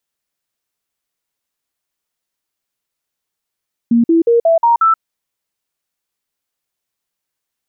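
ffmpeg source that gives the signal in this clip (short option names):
-f lavfi -i "aevalsrc='0.422*clip(min(mod(t,0.18),0.13-mod(t,0.18))/0.005,0,1)*sin(2*PI*234*pow(2,floor(t/0.18)/2)*mod(t,0.18))':d=1.08:s=44100"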